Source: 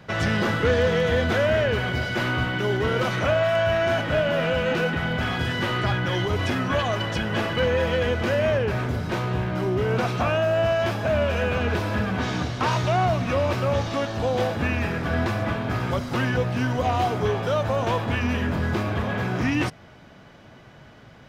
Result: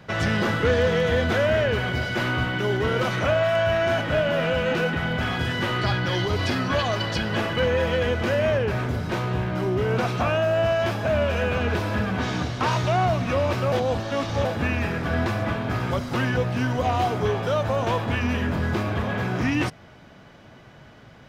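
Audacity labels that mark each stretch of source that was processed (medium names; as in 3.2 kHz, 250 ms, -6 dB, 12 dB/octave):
5.810000	7.350000	peaking EQ 4.5 kHz +10 dB 0.41 oct
13.720000	14.450000	reverse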